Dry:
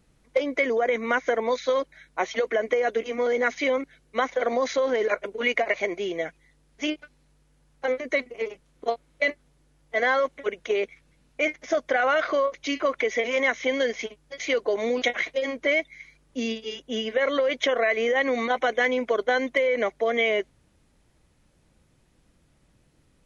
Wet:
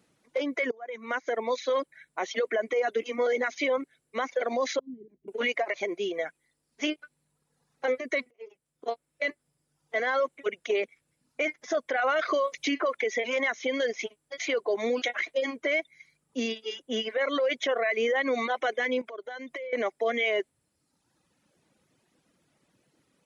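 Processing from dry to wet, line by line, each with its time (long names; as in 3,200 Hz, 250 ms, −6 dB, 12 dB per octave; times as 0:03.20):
0:00.71–0:01.70: fade in, from −22.5 dB
0:04.79–0:05.28: inverse Chebyshev low-pass filter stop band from 520 Hz
0:08.31–0:09.99: fade in equal-power, from −20 dB
0:12.19–0:12.97: multiband upward and downward compressor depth 100%
0:19.01–0:19.73: downward compressor 10 to 1, threshold −33 dBFS
whole clip: high-pass filter 190 Hz 12 dB per octave; reverb reduction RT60 1 s; brickwall limiter −18.5 dBFS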